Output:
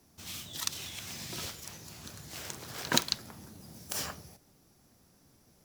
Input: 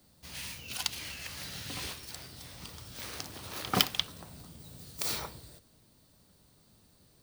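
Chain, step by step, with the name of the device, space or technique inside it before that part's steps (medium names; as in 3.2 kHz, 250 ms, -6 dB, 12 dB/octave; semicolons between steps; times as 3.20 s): nightcore (tape speed +28%)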